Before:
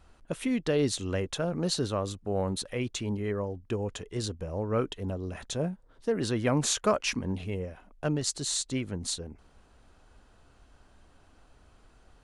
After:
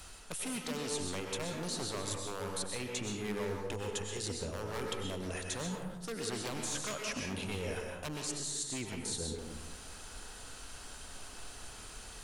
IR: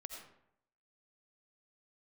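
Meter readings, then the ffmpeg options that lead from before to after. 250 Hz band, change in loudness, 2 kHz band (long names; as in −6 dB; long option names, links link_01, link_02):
−9.0 dB, −7.5 dB, −2.5 dB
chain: -filter_complex "[0:a]asplit=2[link_01][link_02];[link_02]asoftclip=type=hard:threshold=-23dB,volume=-7.5dB[link_03];[link_01][link_03]amix=inputs=2:normalize=0,acrossover=split=210|1800[link_04][link_05][link_06];[link_04]acompressor=threshold=-33dB:ratio=4[link_07];[link_05]acompressor=threshold=-28dB:ratio=4[link_08];[link_06]acompressor=threshold=-44dB:ratio=4[link_09];[link_07][link_08][link_09]amix=inputs=3:normalize=0,aeval=exprs='0.0668*(abs(mod(val(0)/0.0668+3,4)-2)-1)':channel_layout=same,crystalizer=i=8:c=0,areverse,acompressor=threshold=-38dB:ratio=10,areverse[link_10];[1:a]atrim=start_sample=2205,asetrate=29988,aresample=44100[link_11];[link_10][link_11]afir=irnorm=-1:irlink=0,volume=5dB"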